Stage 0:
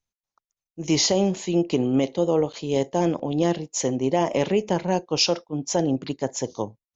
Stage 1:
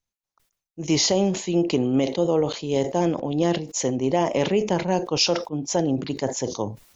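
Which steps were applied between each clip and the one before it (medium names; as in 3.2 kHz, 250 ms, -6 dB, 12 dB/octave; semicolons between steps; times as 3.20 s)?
decay stretcher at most 110 dB/s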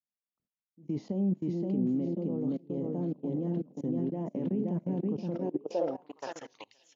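feedback delay 522 ms, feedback 36%, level -3.5 dB; level held to a coarse grid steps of 24 dB; band-pass sweep 210 Hz -> 3.1 kHz, 5.29–6.75 s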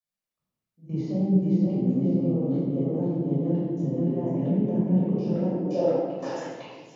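reverberation RT60 1.4 s, pre-delay 12 ms, DRR -7.5 dB; trim -4.5 dB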